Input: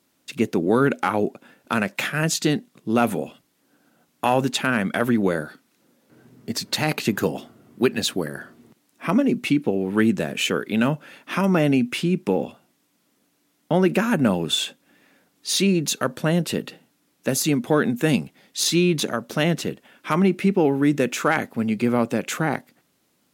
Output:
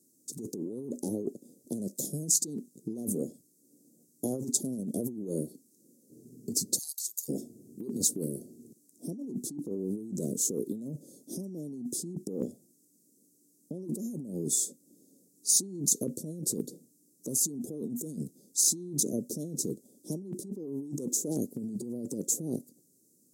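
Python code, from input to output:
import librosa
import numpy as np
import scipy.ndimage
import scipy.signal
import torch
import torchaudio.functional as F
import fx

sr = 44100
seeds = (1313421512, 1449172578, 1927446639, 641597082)

y = fx.ellip_highpass(x, sr, hz=1100.0, order=4, stop_db=50, at=(6.77, 7.28), fade=0.02)
y = scipy.signal.sosfilt(scipy.signal.cheby2(4, 70, [1200.0, 2800.0], 'bandstop', fs=sr, output='sos'), y)
y = fx.over_compress(y, sr, threshold_db=-29.0, ratio=-1.0)
y = fx.weighting(y, sr, curve='D')
y = y * librosa.db_to_amplitude(-4.5)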